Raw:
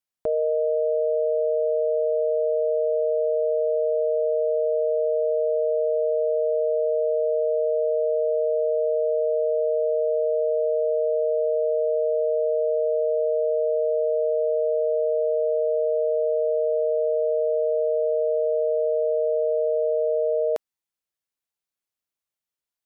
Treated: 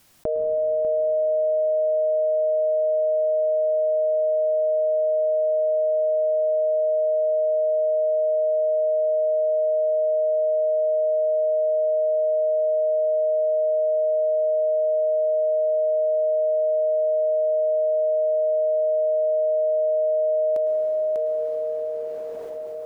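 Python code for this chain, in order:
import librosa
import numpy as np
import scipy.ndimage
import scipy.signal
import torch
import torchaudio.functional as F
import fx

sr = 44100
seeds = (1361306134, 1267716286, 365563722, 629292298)

p1 = fx.low_shelf(x, sr, hz=400.0, db=8.5)
p2 = fx.notch(p1, sr, hz=450.0, q=12.0)
p3 = p2 + fx.echo_single(p2, sr, ms=596, db=-6.0, dry=0)
p4 = fx.rev_plate(p3, sr, seeds[0], rt60_s=4.5, hf_ratio=0.9, predelay_ms=95, drr_db=2.5)
p5 = fx.env_flatten(p4, sr, amount_pct=70)
y = p5 * librosa.db_to_amplitude(-8.5)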